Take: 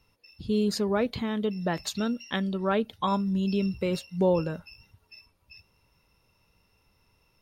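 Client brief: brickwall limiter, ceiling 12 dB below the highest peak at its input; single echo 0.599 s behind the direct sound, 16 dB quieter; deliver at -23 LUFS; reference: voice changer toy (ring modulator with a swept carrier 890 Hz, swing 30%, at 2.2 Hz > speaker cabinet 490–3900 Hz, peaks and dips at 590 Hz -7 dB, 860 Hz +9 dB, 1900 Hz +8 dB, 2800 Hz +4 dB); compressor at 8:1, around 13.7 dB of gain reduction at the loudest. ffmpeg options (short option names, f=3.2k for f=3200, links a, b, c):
-af "acompressor=threshold=-33dB:ratio=8,alimiter=level_in=7.5dB:limit=-24dB:level=0:latency=1,volume=-7.5dB,aecho=1:1:599:0.158,aeval=exprs='val(0)*sin(2*PI*890*n/s+890*0.3/2.2*sin(2*PI*2.2*n/s))':c=same,highpass=490,equalizer=f=590:t=q:w=4:g=-7,equalizer=f=860:t=q:w=4:g=9,equalizer=f=1.9k:t=q:w=4:g=8,equalizer=f=2.8k:t=q:w=4:g=4,lowpass=f=3.9k:w=0.5412,lowpass=f=3.9k:w=1.3066,volume=16dB"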